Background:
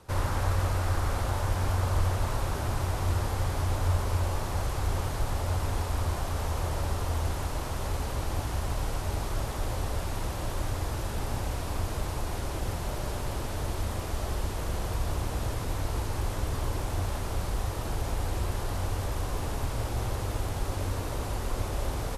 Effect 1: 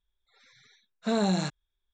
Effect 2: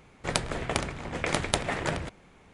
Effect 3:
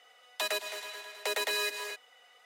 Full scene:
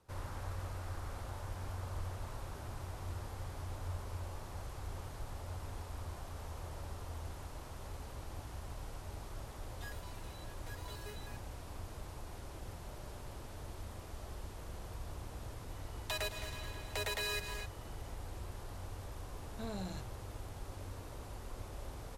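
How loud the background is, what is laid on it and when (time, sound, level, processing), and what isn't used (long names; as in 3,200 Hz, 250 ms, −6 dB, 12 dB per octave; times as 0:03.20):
background −15 dB
0:09.41: mix in 3 −5.5 dB + step-sequenced resonator 9.7 Hz 140–480 Hz
0:15.70: mix in 3 −6.5 dB
0:18.52: mix in 1 −17.5 dB
not used: 2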